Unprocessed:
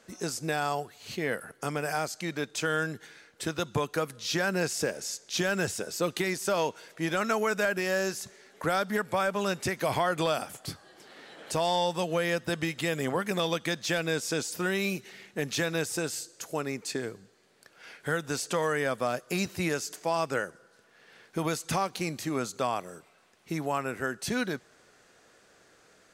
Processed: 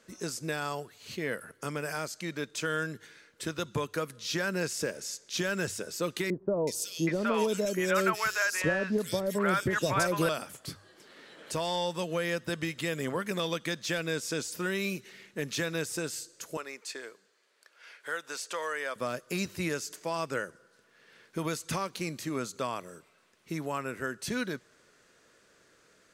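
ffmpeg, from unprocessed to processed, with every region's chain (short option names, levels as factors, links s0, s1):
-filter_complex "[0:a]asettb=1/sr,asplit=3[s0][s1][s2];[s0]atrim=end=6.304[s3];[s1]atrim=start=6.3:end=10.29,asetpts=PTS-STARTPTS,afade=t=in:d=0.004:c=qsin,afade=t=out:st=3.986:d=0.004:c=qsin,acontrast=33,acrossover=split=720|3200[s4][s5][s6];[s6]adelay=370[s7];[s5]adelay=770[s8];[s4][s8][s7]amix=inputs=3:normalize=0,atrim=end_sample=175959[s9];[s2]atrim=start=10.286[s10];[s3][s9]acrossfade=d=0.004:c1=hsin:c2=qsin[s11];[s11][s10]acrossfade=d=0.004:c1=qsin:c2=hsin,asettb=1/sr,asplit=3[s12][s13][s14];[s12]atrim=end=16.574[s15];[s13]atrim=start=16.57:end=18.96,asetpts=PTS-STARTPTS,afade=t=in:d=0.004:c=qsin,afade=t=out:st=2.386:d=0.004:c=qsin,highpass=600,highshelf=f=7900:g=-5[s16];[s14]atrim=start=18.956[s17];[s15][s16]acrossfade=d=0.004:c1=hsin:c2=qsin[s18];[s18][s17]acrossfade=d=0.004:c1=qsin:c2=hsin,equalizer=f=760:w=5.2:g=-9.5,bandreject=f=50:t=h:w=6,bandreject=f=100:t=h:w=6,volume=0.75"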